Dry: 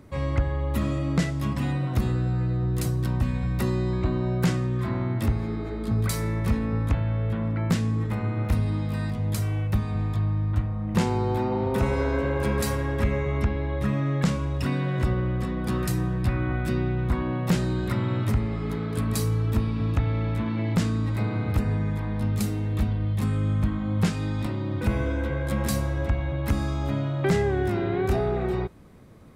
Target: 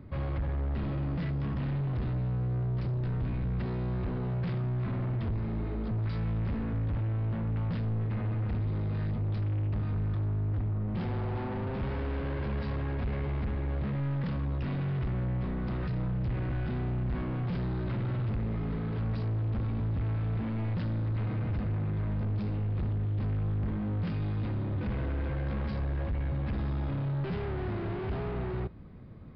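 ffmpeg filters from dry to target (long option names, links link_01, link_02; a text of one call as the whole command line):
ffmpeg -i in.wav -af "asoftclip=type=hard:threshold=-32dB,bass=frequency=250:gain=8,treble=frequency=4000:gain=-10,aresample=11025,aresample=44100,volume=-4dB" out.wav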